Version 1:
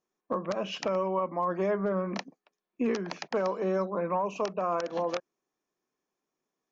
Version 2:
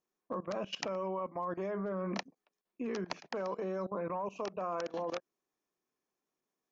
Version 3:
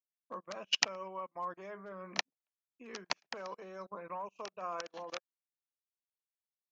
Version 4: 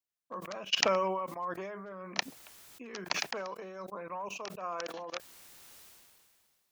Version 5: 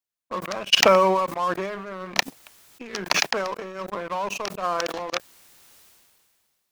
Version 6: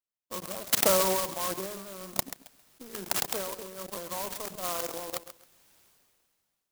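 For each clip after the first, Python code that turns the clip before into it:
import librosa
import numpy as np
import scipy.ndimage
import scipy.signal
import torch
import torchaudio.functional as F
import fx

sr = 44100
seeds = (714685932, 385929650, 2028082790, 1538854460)

y1 = fx.level_steps(x, sr, step_db=18)
y2 = fx.tilt_shelf(y1, sr, db=-7.0, hz=860.0)
y2 = fx.upward_expand(y2, sr, threshold_db=-52.0, expansion=2.5)
y2 = y2 * 10.0 ** (5.0 / 20.0)
y3 = fx.sustainer(y2, sr, db_per_s=27.0)
y3 = y3 * 10.0 ** (1.5 / 20.0)
y4 = fx.leveller(y3, sr, passes=2)
y4 = y4 * 10.0 ** (5.0 / 20.0)
y5 = fx.echo_feedback(y4, sr, ms=134, feedback_pct=22, wet_db=-12.5)
y5 = fx.clock_jitter(y5, sr, seeds[0], jitter_ms=0.15)
y5 = y5 * 10.0 ** (-7.5 / 20.0)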